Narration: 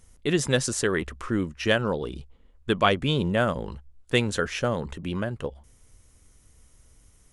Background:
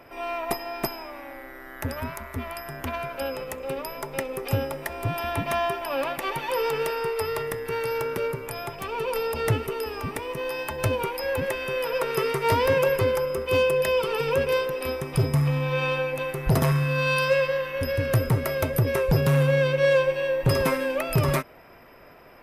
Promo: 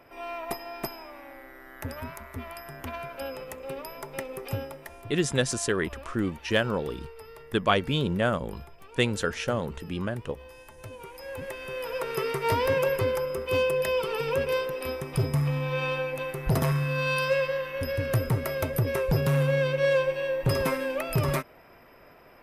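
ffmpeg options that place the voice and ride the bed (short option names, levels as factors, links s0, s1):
-filter_complex "[0:a]adelay=4850,volume=0.794[s0];[1:a]volume=2.99,afade=t=out:st=4.4:d=0.75:silence=0.223872,afade=t=in:st=10.91:d=1.44:silence=0.177828[s1];[s0][s1]amix=inputs=2:normalize=0"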